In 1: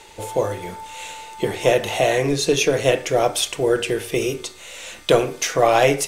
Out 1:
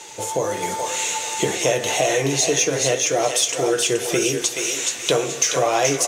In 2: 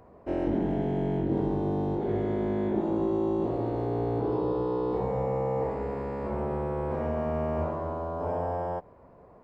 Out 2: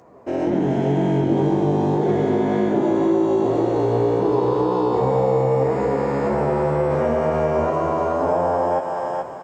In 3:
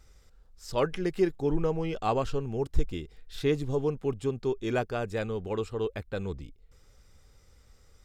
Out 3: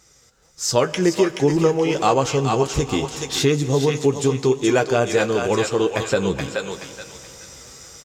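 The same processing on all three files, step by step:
HPF 83 Hz 12 dB/oct; bell 6500 Hz +11 dB 0.65 oct; flange 1.9 Hz, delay 5.4 ms, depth 3.2 ms, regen +50%; in parallel at -8 dB: soft clip -14 dBFS; on the sum: doubler 15 ms -12 dB; AGC gain up to 12.5 dB; low shelf 120 Hz -6.5 dB; on a send: thinning echo 0.426 s, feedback 32%, high-pass 970 Hz, level -4 dB; on the sum: Schroeder reverb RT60 3.4 s, combs from 27 ms, DRR 16.5 dB; compressor 2:1, threshold -28 dBFS; match loudness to -20 LUFS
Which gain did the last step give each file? +4.0, +6.0, +8.0 dB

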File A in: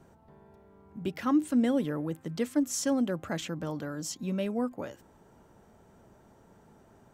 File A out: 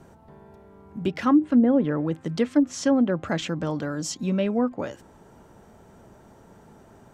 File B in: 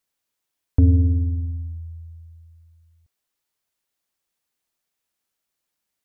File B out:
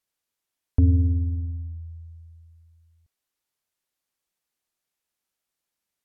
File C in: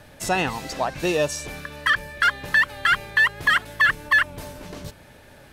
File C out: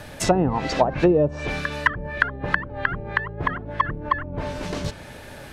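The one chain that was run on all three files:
treble ducked by the level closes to 420 Hz, closed at -19 dBFS; match loudness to -24 LUFS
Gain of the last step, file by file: +7.5, -3.0, +8.5 dB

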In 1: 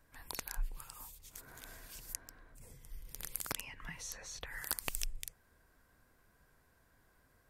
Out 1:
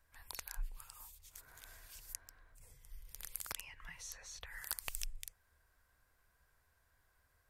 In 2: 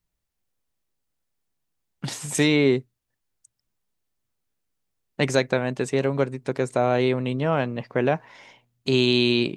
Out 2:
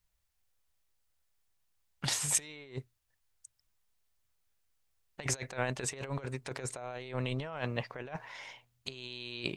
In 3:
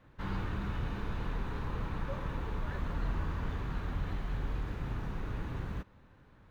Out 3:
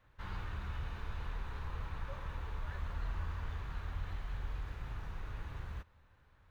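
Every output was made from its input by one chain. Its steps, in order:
bell 77 Hz +5.5 dB 0.38 oct; negative-ratio compressor -27 dBFS, ratio -0.5; bell 240 Hz -12 dB 2.1 oct; gain -3.5 dB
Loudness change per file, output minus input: -4.0, -13.5, -5.5 LU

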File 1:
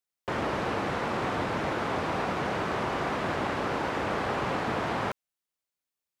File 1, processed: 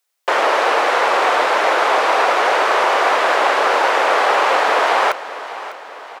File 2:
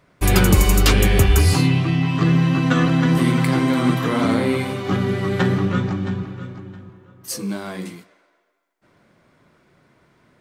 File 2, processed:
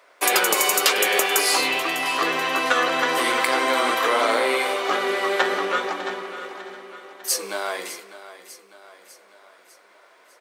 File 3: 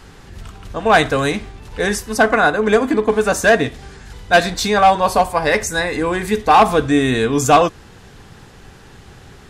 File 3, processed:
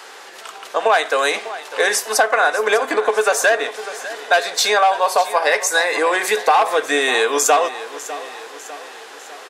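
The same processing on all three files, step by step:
HPF 480 Hz 24 dB/oct; compressor 4:1, threshold -22 dBFS; feedback echo 0.6 s, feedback 53%, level -15 dB; normalise peaks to -2 dBFS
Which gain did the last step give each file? +16.5, +6.5, +8.5 dB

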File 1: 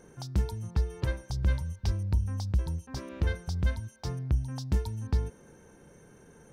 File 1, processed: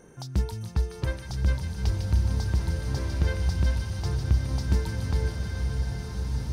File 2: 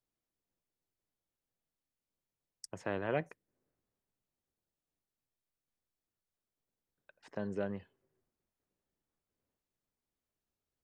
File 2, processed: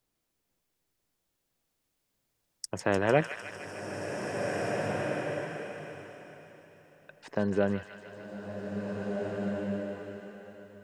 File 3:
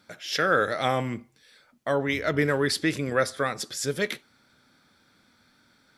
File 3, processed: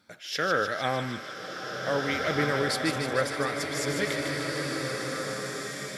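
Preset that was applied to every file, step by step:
thin delay 0.151 s, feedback 69%, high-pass 1500 Hz, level -6 dB; bloom reverb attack 1.97 s, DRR 1.5 dB; normalise peaks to -12 dBFS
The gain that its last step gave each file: +1.5, +9.5, -4.0 dB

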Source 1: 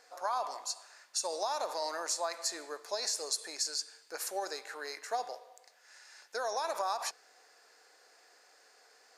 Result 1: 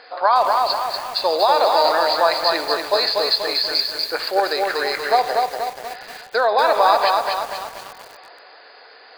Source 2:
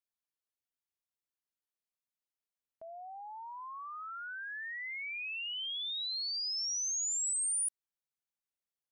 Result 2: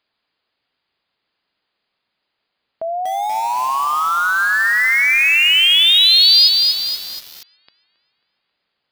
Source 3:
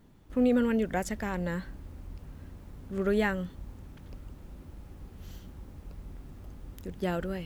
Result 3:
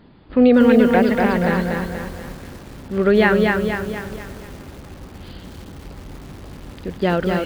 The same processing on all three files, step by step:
brick-wall FIR low-pass 5000 Hz; low shelf 93 Hz -10.5 dB; tape echo 0.271 s, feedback 70%, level -19 dB, low-pass 3600 Hz; lo-fi delay 0.24 s, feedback 55%, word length 9-bit, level -3 dB; normalise peaks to -2 dBFS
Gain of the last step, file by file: +18.0, +25.0, +13.0 dB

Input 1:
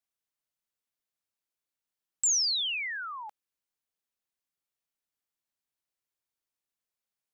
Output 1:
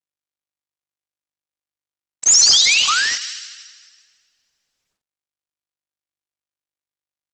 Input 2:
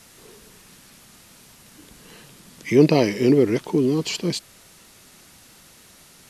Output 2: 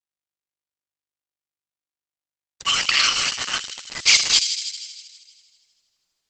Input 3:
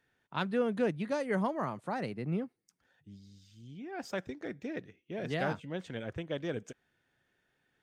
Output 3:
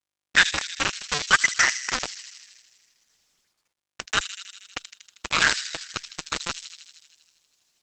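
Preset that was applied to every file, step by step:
band inversion scrambler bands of 1000 Hz; FFT band-pass 1100–7800 Hz; bit-crush 6-bit; thin delay 79 ms, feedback 73%, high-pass 3800 Hz, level -5 dB; Opus 10 kbps 48000 Hz; normalise peaks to -1.5 dBFS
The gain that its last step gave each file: +15.0, +13.5, +22.0 dB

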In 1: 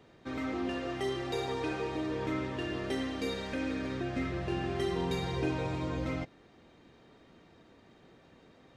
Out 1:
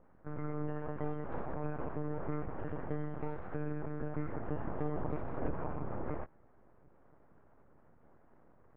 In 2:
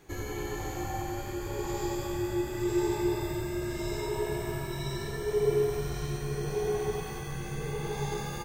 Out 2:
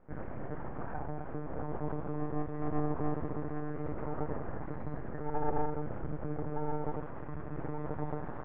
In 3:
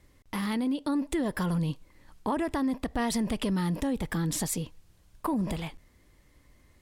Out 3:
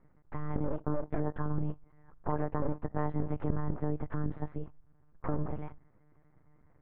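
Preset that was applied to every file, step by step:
monotone LPC vocoder at 8 kHz 150 Hz; full-wave rectifier; LPF 1500 Hz 24 dB/oct; gain -2 dB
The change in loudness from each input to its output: -6.0, -6.0, -6.0 LU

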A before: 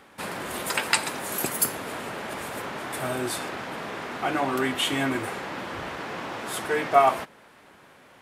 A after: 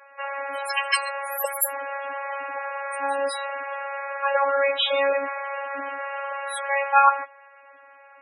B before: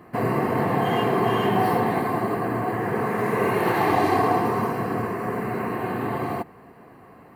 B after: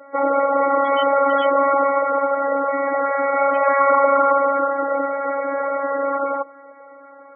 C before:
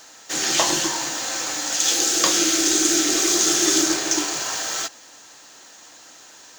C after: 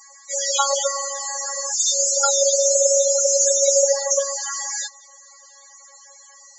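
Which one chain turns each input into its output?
frequency shift +250 Hz; robotiser 277 Hz; loudest bins only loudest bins 16; normalise peaks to -3 dBFS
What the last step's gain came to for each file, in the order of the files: +6.5, +8.5, +5.5 dB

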